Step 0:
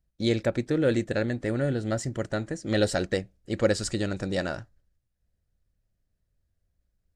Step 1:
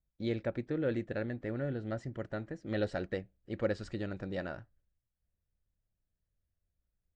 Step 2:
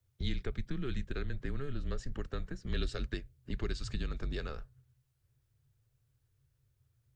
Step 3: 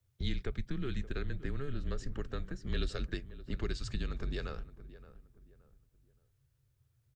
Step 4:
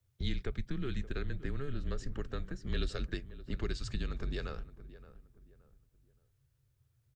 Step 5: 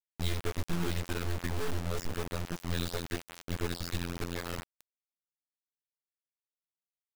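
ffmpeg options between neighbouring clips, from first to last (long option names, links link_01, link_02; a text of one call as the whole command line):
ffmpeg -i in.wav -af "lowpass=2800,volume=-9dB" out.wav
ffmpeg -i in.wav -filter_complex "[0:a]acrossover=split=160|3000[link_01][link_02][link_03];[link_02]acompressor=threshold=-49dB:ratio=5[link_04];[link_01][link_04][link_03]amix=inputs=3:normalize=0,afreqshift=-140,volume=9dB" out.wav
ffmpeg -i in.wav -filter_complex "[0:a]asplit=2[link_01][link_02];[link_02]adelay=572,lowpass=frequency=1400:poles=1,volume=-15dB,asplit=2[link_03][link_04];[link_04]adelay=572,lowpass=frequency=1400:poles=1,volume=0.34,asplit=2[link_05][link_06];[link_06]adelay=572,lowpass=frequency=1400:poles=1,volume=0.34[link_07];[link_01][link_03][link_05][link_07]amix=inputs=4:normalize=0" out.wav
ffmpeg -i in.wav -af anull out.wav
ffmpeg -i in.wav -af "afftfilt=real='hypot(re,im)*cos(PI*b)':imag='0':win_size=2048:overlap=0.75,acrusher=bits=4:dc=4:mix=0:aa=0.000001,volume=6dB" out.wav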